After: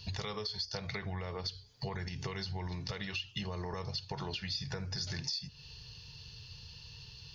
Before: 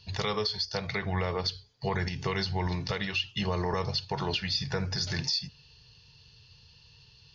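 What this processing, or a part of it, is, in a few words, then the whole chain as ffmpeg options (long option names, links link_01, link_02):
ASMR close-microphone chain: -af "lowshelf=frequency=140:gain=4.5,acompressor=threshold=-41dB:ratio=6,highshelf=frequency=6300:gain=8,volume=3.5dB"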